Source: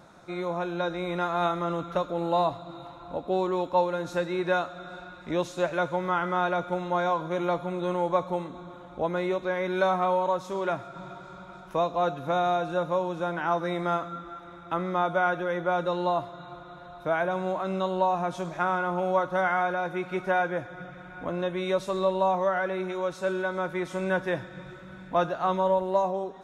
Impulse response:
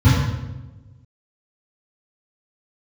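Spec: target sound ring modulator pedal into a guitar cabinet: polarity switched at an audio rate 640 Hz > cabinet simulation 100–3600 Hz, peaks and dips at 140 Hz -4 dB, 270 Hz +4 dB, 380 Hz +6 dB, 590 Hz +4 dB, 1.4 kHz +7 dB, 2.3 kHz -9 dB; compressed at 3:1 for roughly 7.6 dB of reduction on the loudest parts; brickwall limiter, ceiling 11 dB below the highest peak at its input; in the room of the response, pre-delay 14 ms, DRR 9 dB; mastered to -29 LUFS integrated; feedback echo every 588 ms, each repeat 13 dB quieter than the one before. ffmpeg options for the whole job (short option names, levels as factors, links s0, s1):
-filter_complex "[0:a]acompressor=threshold=0.0316:ratio=3,alimiter=level_in=1.68:limit=0.0631:level=0:latency=1,volume=0.596,aecho=1:1:588|1176|1764:0.224|0.0493|0.0108,asplit=2[s0][s1];[1:a]atrim=start_sample=2205,adelay=14[s2];[s1][s2]afir=irnorm=-1:irlink=0,volume=0.0355[s3];[s0][s3]amix=inputs=2:normalize=0,aeval=exprs='val(0)*sgn(sin(2*PI*640*n/s))':c=same,highpass=100,equalizer=f=140:t=q:w=4:g=-4,equalizer=f=270:t=q:w=4:g=4,equalizer=f=380:t=q:w=4:g=6,equalizer=f=590:t=q:w=4:g=4,equalizer=f=1400:t=q:w=4:g=7,equalizer=f=2300:t=q:w=4:g=-9,lowpass=f=3600:w=0.5412,lowpass=f=3600:w=1.3066,volume=1.58"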